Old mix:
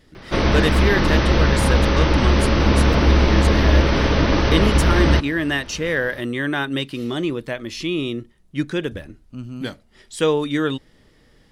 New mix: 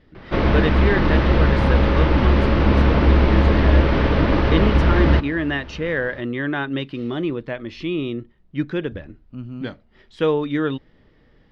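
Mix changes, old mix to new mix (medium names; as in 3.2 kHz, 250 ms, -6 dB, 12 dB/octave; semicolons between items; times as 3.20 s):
background: send +6.0 dB; master: add distance through air 280 m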